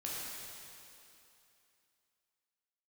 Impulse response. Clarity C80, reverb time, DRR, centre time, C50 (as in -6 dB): -1.5 dB, 2.8 s, -6.0 dB, 172 ms, -3.0 dB